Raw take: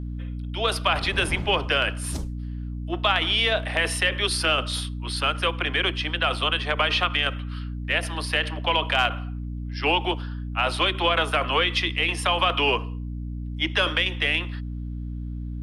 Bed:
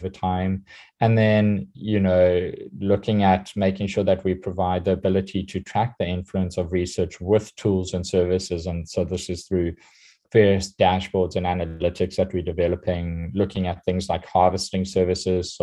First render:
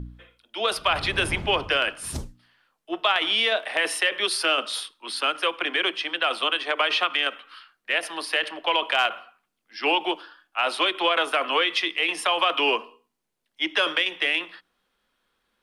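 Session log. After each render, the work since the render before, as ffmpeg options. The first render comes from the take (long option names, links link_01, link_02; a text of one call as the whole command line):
ffmpeg -i in.wav -af "bandreject=frequency=60:width_type=h:width=4,bandreject=frequency=120:width_type=h:width=4,bandreject=frequency=180:width_type=h:width=4,bandreject=frequency=240:width_type=h:width=4,bandreject=frequency=300:width_type=h:width=4" out.wav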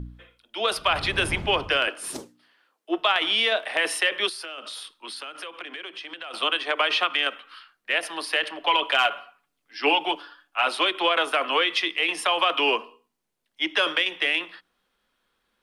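ffmpeg -i in.wav -filter_complex "[0:a]asettb=1/sr,asplit=3[link_01][link_02][link_03];[link_01]atrim=end=1.874[link_04];[link_02]atrim=start=1.87:end=2.98,asetpts=PTS-STARTPTS,afade=type=in:duration=0.004:curve=qsin,afade=type=out:start_time=1.106:duration=0.004:curve=qsin,highpass=frequency=340:width_type=q:width=1.7[link_05];[link_03]atrim=start=2.976[link_06];[link_04][link_05]acrossfade=duration=0.004:curve1=hsin:curve2=qsin[link_07];[link_07][link_06]acrossfade=duration=0.004:curve1=qsin:curve2=hsin,asettb=1/sr,asplit=3[link_08][link_09][link_10];[link_08]atrim=end=4.294[link_11];[link_09]atrim=start=4.29:end=6.34,asetpts=PTS-STARTPTS,afade=type=in:duration=0.004:curve=qsin,afade=type=out:start_time=2.046:duration=0.004:curve=qsin,acompressor=threshold=-33dB:ratio=8:attack=3.2:release=140:knee=1:detection=peak[link_12];[link_10]atrim=start=6.336[link_13];[link_11][link_12]acrossfade=duration=0.004:curve1=hsin:curve2=qsin[link_14];[link_14][link_13]acrossfade=duration=0.004:curve1=qsin:curve2=hsin,asettb=1/sr,asplit=3[link_15][link_16][link_17];[link_15]atrim=end=8.604[link_18];[link_16]atrim=start=8.6:end=10.68,asetpts=PTS-STARTPTS,afade=type=in:duration=0.004:curve=qsin,afade=type=out:start_time=2.076:duration=0.004:curve=qsin,aecho=1:1:7:0.54,atrim=end_sample=91728[link_19];[link_17]atrim=start=10.676[link_20];[link_18][link_19]acrossfade=duration=0.004:curve1=hsin:curve2=qsin[link_21];[link_21][link_20]acrossfade=duration=0.004:curve1=qsin:curve2=hsin" out.wav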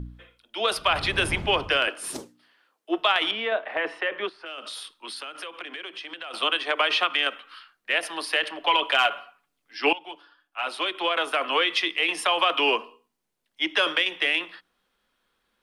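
ffmpeg -i in.wav -filter_complex "[0:a]asettb=1/sr,asplit=3[link_01][link_02][link_03];[link_01]atrim=end=3.314[link_04];[link_02]atrim=start=3.31:end=4.46,asetpts=PTS-STARTPTS,afade=type=in:duration=0.004:curve=qsin,afade=type=out:start_time=1.146:duration=0.004:curve=qsin,lowpass=1700[link_05];[link_03]atrim=start=4.456[link_06];[link_04][link_05]acrossfade=duration=0.004:curve1=hsin:curve2=qsin[link_07];[link_07][link_06]acrossfade=duration=0.004:curve1=qsin:curve2=hsin,asplit=2[link_08][link_09];[link_08]atrim=end=9.93,asetpts=PTS-STARTPTS,afade=type=out:start_time=9.926:duration=0.004:curve=hsin:silence=0.125893[link_10];[link_09]atrim=start=9.93,asetpts=PTS-STARTPTS,afade=type=in:duration=1.79:silence=0.125893[link_11];[link_10][link_11]concat=n=2:v=0:a=1" out.wav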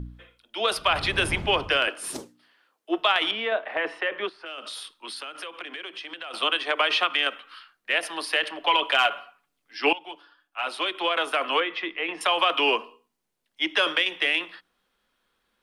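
ffmpeg -i in.wav -filter_complex "[0:a]asettb=1/sr,asplit=3[link_01][link_02][link_03];[link_01]atrim=end=11.604[link_04];[link_02]atrim=start=11.6:end=12.21,asetpts=PTS-STARTPTS,afade=type=in:duration=0.004:curve=qsin,afade=type=out:start_time=0.606:duration=0.004:curve=qsin,lowpass=1900[link_05];[link_03]atrim=start=12.206[link_06];[link_04][link_05]acrossfade=duration=0.004:curve1=hsin:curve2=qsin[link_07];[link_07][link_06]acrossfade=duration=0.004:curve1=qsin:curve2=hsin" out.wav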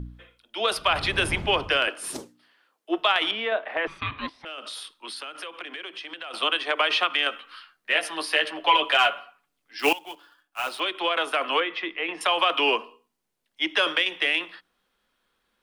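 ffmpeg -i in.wav -filter_complex "[0:a]asettb=1/sr,asplit=3[link_01][link_02][link_03];[link_01]atrim=end=3.874[link_04];[link_02]atrim=start=3.87:end=4.45,asetpts=PTS-STARTPTS,afade=type=in:duration=0.004:curve=qsin,afade=type=out:start_time=0.576:duration=0.004:curve=qsin,aeval=exprs='val(0)*sin(2*PI*650*n/s)':channel_layout=same[link_05];[link_03]atrim=start=4.446[link_06];[link_04][link_05]acrossfade=duration=0.004:curve1=hsin:curve2=qsin[link_07];[link_07][link_06]acrossfade=duration=0.004:curve1=qsin:curve2=hsin,asettb=1/sr,asplit=3[link_08][link_09][link_10];[link_08]atrim=end=7.284[link_11];[link_09]atrim=start=7.28:end=9.11,asetpts=PTS-STARTPTS,afade=type=in:duration=0.004:curve=qsin,afade=type=out:start_time=1.826:duration=0.004:curve=qsin,asplit=2[link_12][link_13];[link_13]adelay=13,volume=-5dB[link_14];[link_12][link_14]amix=inputs=2:normalize=0,atrim=end_sample=80703[link_15];[link_10]atrim=start=9.106[link_16];[link_11][link_15]acrossfade=duration=0.004:curve1=hsin:curve2=qsin[link_17];[link_17][link_16]acrossfade=duration=0.004:curve1=qsin:curve2=hsin,asettb=1/sr,asplit=3[link_18][link_19][link_20];[link_18]atrim=end=9.794[link_21];[link_19]atrim=start=9.79:end=10.8,asetpts=PTS-STARTPTS,afade=type=in:duration=0.004:curve=qsin,afade=type=out:start_time=1.006:duration=0.004:curve=qsin,acrusher=bits=3:mode=log:mix=0:aa=0.000001[link_22];[link_20]atrim=start=10.796[link_23];[link_21][link_22]acrossfade=duration=0.004:curve1=hsin:curve2=qsin[link_24];[link_24][link_23]acrossfade=duration=0.004:curve1=qsin:curve2=hsin" out.wav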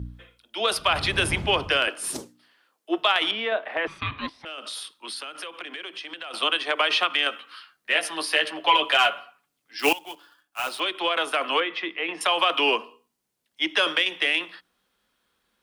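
ffmpeg -i in.wav -af "highpass=46,bass=frequency=250:gain=3,treble=frequency=4000:gain=4" out.wav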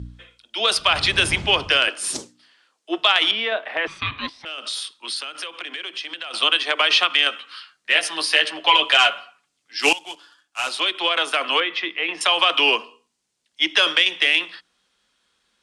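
ffmpeg -i in.wav -af "lowpass=frequency=8500:width=0.5412,lowpass=frequency=8500:width=1.3066,highshelf=frequency=2300:gain=10" out.wav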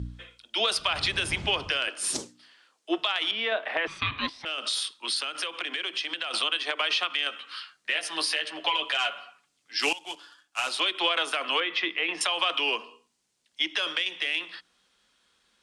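ffmpeg -i in.wav -af "acompressor=threshold=-24dB:ratio=2,alimiter=limit=-13dB:level=0:latency=1:release=481" out.wav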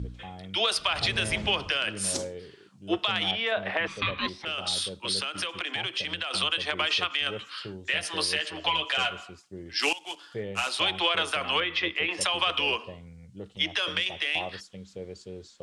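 ffmpeg -i in.wav -i bed.wav -filter_complex "[1:a]volume=-19.5dB[link_01];[0:a][link_01]amix=inputs=2:normalize=0" out.wav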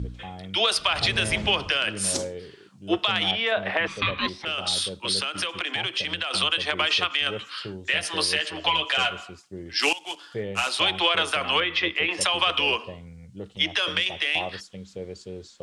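ffmpeg -i in.wav -af "volume=3.5dB" out.wav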